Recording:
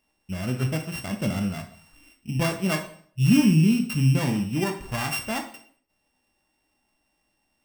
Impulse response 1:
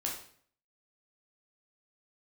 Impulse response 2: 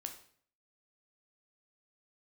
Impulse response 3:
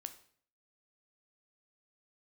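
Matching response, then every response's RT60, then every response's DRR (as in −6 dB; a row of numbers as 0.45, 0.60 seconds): 2; 0.55, 0.55, 0.55 seconds; −2.0, 5.0, 9.0 decibels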